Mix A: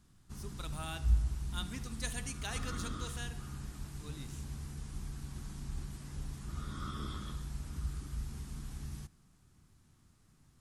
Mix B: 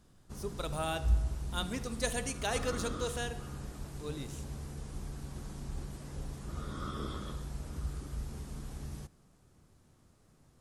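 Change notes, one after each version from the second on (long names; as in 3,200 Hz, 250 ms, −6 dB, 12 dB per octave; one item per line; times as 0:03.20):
speech +4.0 dB
master: add parametric band 530 Hz +12 dB 1.2 octaves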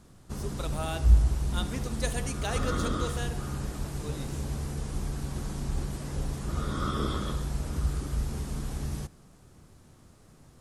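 background +9.0 dB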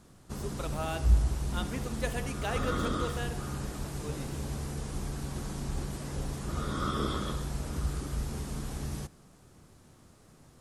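speech: add flat-topped bell 6,300 Hz −9 dB
master: add low-shelf EQ 120 Hz −5 dB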